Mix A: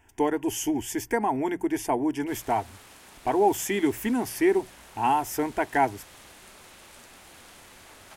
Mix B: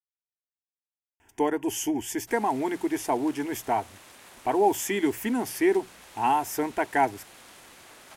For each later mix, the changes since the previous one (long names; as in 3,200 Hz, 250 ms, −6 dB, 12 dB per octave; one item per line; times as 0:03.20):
speech: entry +1.20 s
master: add low-shelf EQ 92 Hz −10.5 dB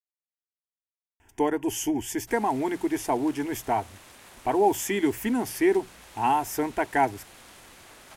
master: add low-shelf EQ 92 Hz +10.5 dB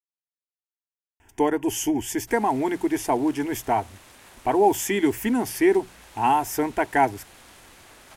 speech +3.0 dB